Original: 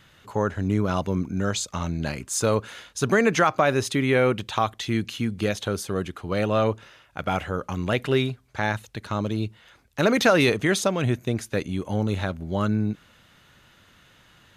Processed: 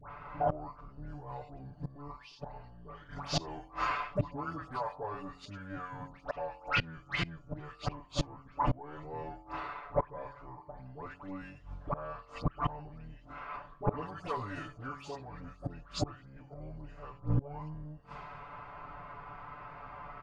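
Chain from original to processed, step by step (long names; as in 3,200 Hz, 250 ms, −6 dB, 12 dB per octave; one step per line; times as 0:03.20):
sub-octave generator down 1 octave, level +2 dB
pitch-shifted copies added +12 semitones −17 dB
low-pass that shuts in the quiet parts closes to 2,600 Hz, open at −14.5 dBFS
flat-topped bell 1,200 Hz +9.5 dB
all-pass dispersion highs, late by 77 ms, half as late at 2,000 Hz
speed change −28%
high-shelf EQ 7,000 Hz −2.5 dB
hum removal 45.66 Hz, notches 31
gate with flip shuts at −21 dBFS, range −28 dB
comb filter 6.9 ms, depth 99%
level +1 dB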